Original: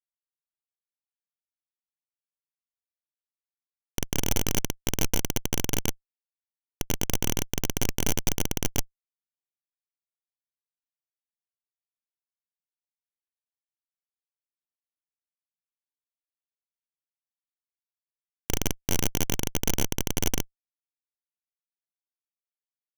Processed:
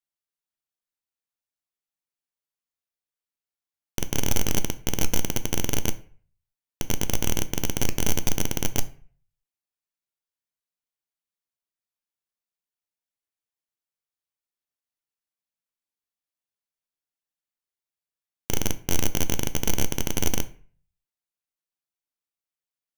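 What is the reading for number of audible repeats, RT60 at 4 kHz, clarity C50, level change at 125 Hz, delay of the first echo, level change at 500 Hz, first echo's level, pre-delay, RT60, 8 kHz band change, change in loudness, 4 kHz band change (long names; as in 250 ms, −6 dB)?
no echo audible, 0.35 s, 17.0 dB, +1.5 dB, no echo audible, +1.5 dB, no echo audible, 10 ms, 0.45 s, +1.0 dB, +1.5 dB, +1.5 dB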